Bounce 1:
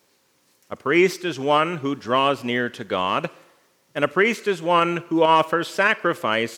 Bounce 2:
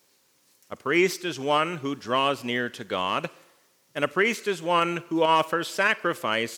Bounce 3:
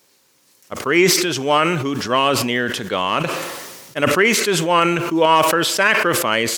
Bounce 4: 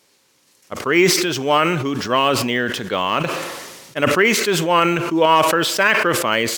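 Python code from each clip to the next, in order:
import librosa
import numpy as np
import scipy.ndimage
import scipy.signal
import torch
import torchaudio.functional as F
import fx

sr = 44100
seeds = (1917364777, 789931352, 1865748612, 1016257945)

y1 = fx.high_shelf(x, sr, hz=3400.0, db=7.0)
y1 = y1 * librosa.db_to_amplitude(-5.0)
y2 = fx.sustainer(y1, sr, db_per_s=34.0)
y2 = y2 * librosa.db_to_amplitude(6.5)
y3 = np.interp(np.arange(len(y2)), np.arange(len(y2))[::2], y2[::2])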